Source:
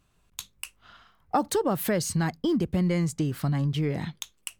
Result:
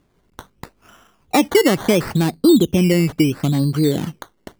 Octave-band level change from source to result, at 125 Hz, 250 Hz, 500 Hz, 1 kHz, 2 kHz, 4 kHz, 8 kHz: +7.0 dB, +11.5 dB, +11.5 dB, +5.5 dB, +11.0 dB, +12.0 dB, +5.0 dB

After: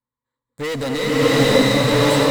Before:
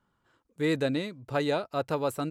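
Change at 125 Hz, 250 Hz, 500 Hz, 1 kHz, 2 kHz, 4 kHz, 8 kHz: +14.5 dB, +12.5 dB, +12.5 dB, +11.5 dB, +15.0 dB, +18.5 dB, +20.0 dB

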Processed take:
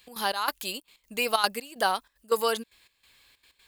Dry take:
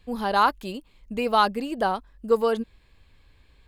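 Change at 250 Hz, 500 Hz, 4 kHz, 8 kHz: -11.0 dB, -5.0 dB, +3.5 dB, no reading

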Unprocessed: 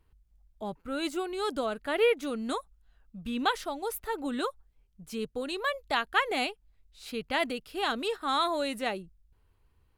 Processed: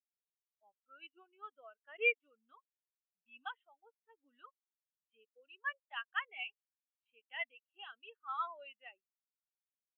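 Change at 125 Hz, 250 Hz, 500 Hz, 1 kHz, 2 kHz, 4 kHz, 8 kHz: under -40 dB, under -40 dB, -18.0 dB, -15.0 dB, -6.5 dB, -16.0 dB, under -35 dB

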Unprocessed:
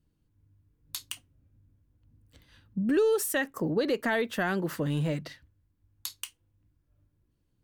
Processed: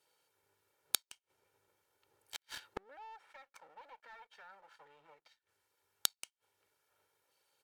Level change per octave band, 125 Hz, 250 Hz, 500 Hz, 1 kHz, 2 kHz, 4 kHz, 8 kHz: -35.5 dB, -34.0 dB, -29.5 dB, -14.0 dB, -18.5 dB, -2.5 dB, -4.5 dB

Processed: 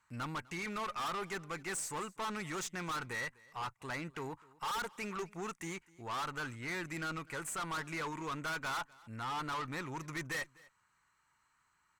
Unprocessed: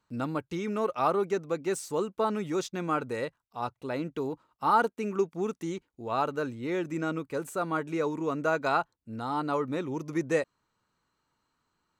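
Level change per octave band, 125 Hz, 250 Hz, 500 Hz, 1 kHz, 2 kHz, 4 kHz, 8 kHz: -7.0 dB, -12.0 dB, -15.5 dB, -8.5 dB, -2.0 dB, +1.0 dB, +1.5 dB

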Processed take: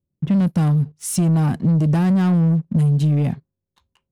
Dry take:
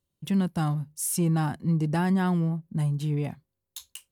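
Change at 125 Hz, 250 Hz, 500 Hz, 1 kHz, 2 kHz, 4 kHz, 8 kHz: +10.0 dB, +8.5 dB, +5.0 dB, +1.5 dB, +1.0 dB, no reading, +2.5 dB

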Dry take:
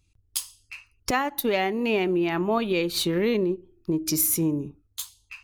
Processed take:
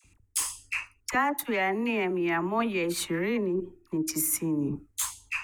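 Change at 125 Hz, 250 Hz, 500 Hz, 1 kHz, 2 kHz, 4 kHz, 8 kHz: -4.5 dB, -3.0 dB, -5.0 dB, -1.0 dB, +1.0 dB, -6.5 dB, -1.0 dB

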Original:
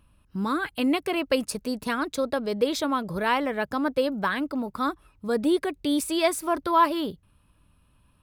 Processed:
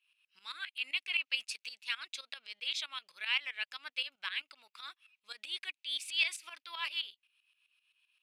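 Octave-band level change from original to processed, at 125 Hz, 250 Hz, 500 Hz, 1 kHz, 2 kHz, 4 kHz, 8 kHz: under -40 dB, under -40 dB, -38.0 dB, -24.0 dB, -4.5 dB, 0.0 dB, -11.5 dB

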